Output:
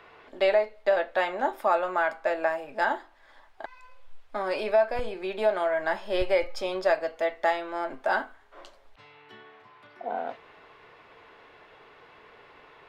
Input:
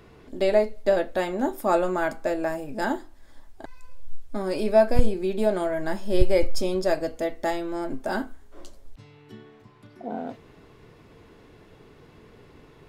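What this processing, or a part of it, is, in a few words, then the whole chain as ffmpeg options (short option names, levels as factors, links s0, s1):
DJ mixer with the lows and highs turned down: -filter_complex "[0:a]acrossover=split=570 3700:gain=0.0794 1 0.112[s0][s1][s2];[s0][s1][s2]amix=inputs=3:normalize=0,alimiter=limit=0.106:level=0:latency=1:release=458,volume=2.11"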